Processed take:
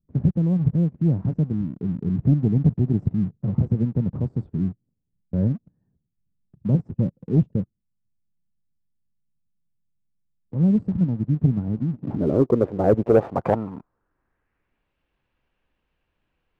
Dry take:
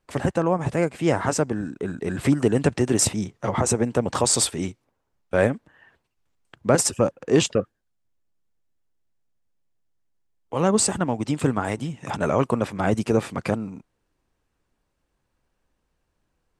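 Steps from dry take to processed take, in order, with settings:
dynamic equaliser 210 Hz, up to −4 dB, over −33 dBFS, Q 1.2
low-pass filter sweep 180 Hz → 2,800 Hz, 0:11.60–0:14.91
leveller curve on the samples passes 1

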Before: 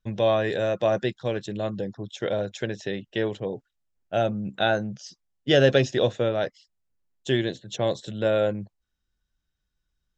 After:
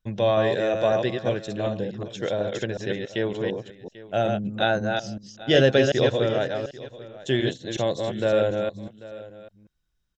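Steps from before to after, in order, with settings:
delay that plays each chunk backwards 185 ms, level −4 dB
on a send: single-tap delay 791 ms −18 dB

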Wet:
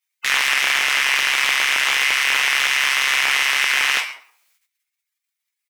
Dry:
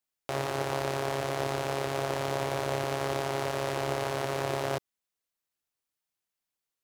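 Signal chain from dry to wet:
double-tracking delay 15 ms −3 dB
on a send at −5 dB: convolution reverb RT60 0.65 s, pre-delay 3 ms
on the sum: gate on every frequency bin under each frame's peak −15 dB weak
high-pass filter 1,500 Hz 12 dB per octave
parametric band 2,200 Hz +9 dB 0.35 octaves
in parallel at +0.5 dB: speech leveller 0.5 s
on the sum: soft clipping −16 dBFS, distortion −18 dB
tempo change 1.2×
single-tap delay 137 ms −24 dB
boost into a limiter +20.5 dB
highs frequency-modulated by the lows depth 0.45 ms
level −5 dB

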